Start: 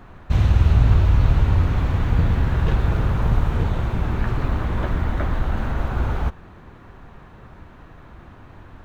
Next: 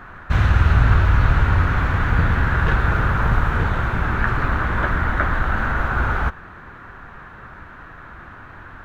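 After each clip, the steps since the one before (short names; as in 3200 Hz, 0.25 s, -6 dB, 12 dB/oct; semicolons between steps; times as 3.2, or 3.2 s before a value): bell 1500 Hz +14.5 dB 1.1 oct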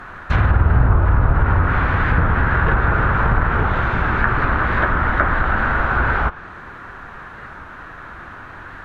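tone controls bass -4 dB, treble +3 dB; treble ducked by the level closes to 1000 Hz, closed at -13.5 dBFS; record warp 45 rpm, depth 100 cents; gain +4.5 dB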